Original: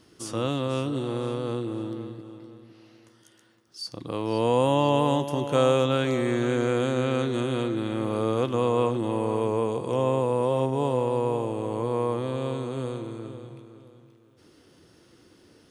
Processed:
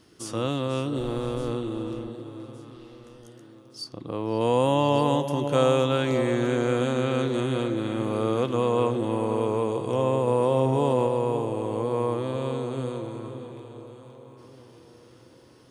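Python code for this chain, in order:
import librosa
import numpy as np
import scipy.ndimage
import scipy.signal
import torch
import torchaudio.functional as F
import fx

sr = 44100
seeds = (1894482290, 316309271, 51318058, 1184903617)

y = fx.dmg_noise_colour(x, sr, seeds[0], colour='brown', level_db=-42.0, at=(0.96, 1.5), fade=0.02)
y = fx.high_shelf(y, sr, hz=2400.0, db=-9.5, at=(3.84, 4.41))
y = fx.echo_alternate(y, sr, ms=584, hz=850.0, feedback_pct=59, wet_db=-10.5)
y = fx.env_flatten(y, sr, amount_pct=70, at=(10.27, 11.07))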